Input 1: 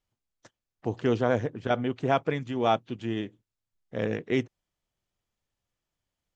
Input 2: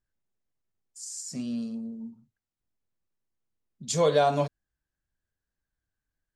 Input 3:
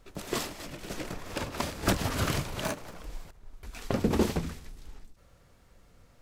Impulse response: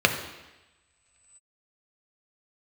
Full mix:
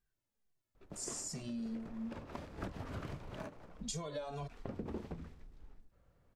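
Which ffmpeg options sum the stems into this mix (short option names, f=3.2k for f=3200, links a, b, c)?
-filter_complex "[1:a]acompressor=threshold=-33dB:ratio=6,asplit=2[a][b];[b]adelay=2.1,afreqshift=-2.3[c];[a][c]amix=inputs=2:normalize=1,volume=3dB[d];[2:a]lowpass=f=1.2k:p=1,adelay=750,volume=-9.5dB[e];[d][e]amix=inputs=2:normalize=0,acompressor=threshold=-40dB:ratio=3"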